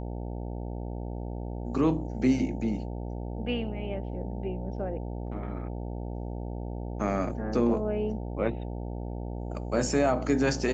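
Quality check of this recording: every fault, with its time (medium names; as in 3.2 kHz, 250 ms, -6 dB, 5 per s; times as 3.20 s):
buzz 60 Hz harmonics 15 -35 dBFS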